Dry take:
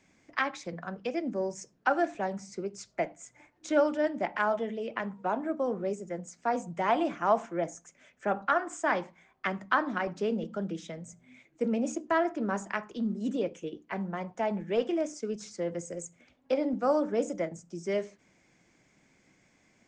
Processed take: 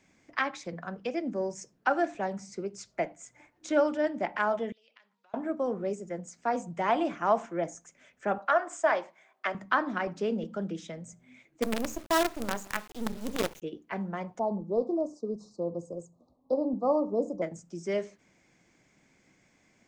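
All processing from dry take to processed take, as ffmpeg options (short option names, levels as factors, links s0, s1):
-filter_complex "[0:a]asettb=1/sr,asplit=3[s0][s1][s2];[s0]atrim=end=4.724[s3];[s1]atrim=start=4.72:end=5.34,asetpts=PTS-STARTPTS,afade=t=in:d=0.004:c=qsin,afade=t=out:st=0.616:d=0.004:c=qsin,acompressor=threshold=0.0112:ratio=16:attack=3.2:release=140:knee=1:detection=peak,bandpass=f=4200:t=q:w=2.1[s4];[s2]atrim=start=5.336[s5];[s3][s4]acrossfade=d=0.004:c1=hsin:c2=qsin[s6];[s6][s5]acrossfade=d=0.004:c1=qsin:c2=hsin,asettb=1/sr,asplit=3[s7][s8][s9];[s7]atrim=end=8.384[s10];[s8]atrim=start=8.38:end=9.55,asetpts=PTS-STARTPTS,afade=t=in:d=0.004:c=qsin,afade=t=out:st=1.166:d=0.004:c=qsin,highpass=410,equalizer=f=630:w=6.9:g=9[s11];[s9]atrim=start=9.546[s12];[s10][s11]acrossfade=d=0.004:c1=hsin:c2=qsin[s13];[s13][s12]acrossfade=d=0.004:c1=qsin:c2=hsin,asettb=1/sr,asplit=3[s14][s15][s16];[s14]atrim=end=11.624[s17];[s15]atrim=start=11.62:end=13.62,asetpts=PTS-STARTPTS,afade=t=in:d=0.004:c=qsin,afade=t=out:st=1.996:d=0.004:c=qsin,highshelf=f=7200:g=8,acrusher=bits=5:dc=4:mix=0:aa=0.000001[s18];[s16]atrim=start=13.616[s19];[s17][s18]acrossfade=d=0.004:c1=hsin:c2=qsin[s20];[s20][s19]acrossfade=d=0.004:c1=qsin:c2=hsin,asettb=1/sr,asplit=3[s21][s22][s23];[s21]atrim=end=14.394[s24];[s22]atrim=start=14.39:end=17.42,asetpts=PTS-STARTPTS,afade=t=in:d=0.004:c=qsin,afade=t=out:st=3.026:d=0.004:c=qsin,asuperstop=centerf=2200:order=20:qfactor=0.78,highshelf=f=4100:t=q:w=1.5:g=-13[s25];[s23]atrim=start=17.416[s26];[s24][s25]acrossfade=d=0.004:c1=hsin:c2=qsin[s27];[s27][s26]acrossfade=d=0.004:c1=qsin:c2=hsin"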